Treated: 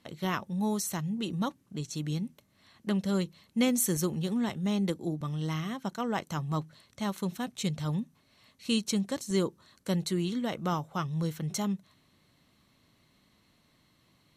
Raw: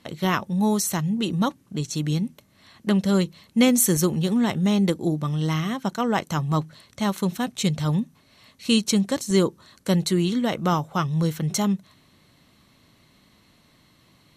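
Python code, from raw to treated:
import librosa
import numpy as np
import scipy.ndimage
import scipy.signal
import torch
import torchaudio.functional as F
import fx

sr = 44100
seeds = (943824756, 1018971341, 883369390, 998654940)

y = fx.band_widen(x, sr, depth_pct=40, at=(4.49, 5.21))
y = y * librosa.db_to_amplitude(-8.5)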